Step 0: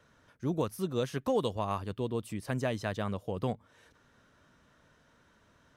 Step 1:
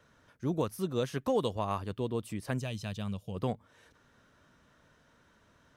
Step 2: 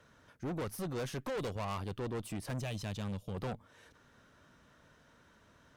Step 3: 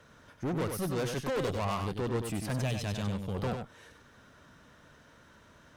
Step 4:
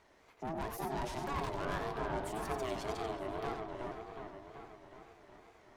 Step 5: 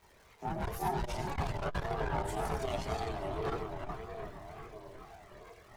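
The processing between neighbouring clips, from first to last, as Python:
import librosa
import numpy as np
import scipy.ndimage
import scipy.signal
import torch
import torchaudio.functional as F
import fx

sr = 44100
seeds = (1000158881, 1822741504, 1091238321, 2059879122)

y1 = fx.spec_box(x, sr, start_s=2.59, length_s=0.76, low_hz=220.0, high_hz=2300.0, gain_db=-10)
y2 = fx.tube_stage(y1, sr, drive_db=38.0, bias=0.55)
y2 = y2 * 10.0 ** (3.5 / 20.0)
y3 = y2 + 10.0 ** (-6.0 / 20.0) * np.pad(y2, (int(96 * sr / 1000.0), 0))[:len(y2)]
y3 = y3 * 10.0 ** (5.0 / 20.0)
y4 = fx.echo_wet_lowpass(y3, sr, ms=372, feedback_pct=61, hz=2400.0, wet_db=-3.5)
y4 = y4 * np.sin(2.0 * np.pi * 530.0 * np.arange(len(y4)) / sr)
y4 = fx.wow_flutter(y4, sr, seeds[0], rate_hz=2.1, depth_cents=140.0)
y4 = y4 * 10.0 ** (-4.5 / 20.0)
y5 = fx.dmg_crackle(y4, sr, seeds[1], per_s=360.0, level_db=-55.0)
y5 = fx.chorus_voices(y5, sr, voices=6, hz=0.38, base_ms=26, depth_ms=1.3, mix_pct=65)
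y5 = fx.transformer_sat(y5, sr, knee_hz=130.0)
y5 = y5 * 10.0 ** (6.0 / 20.0)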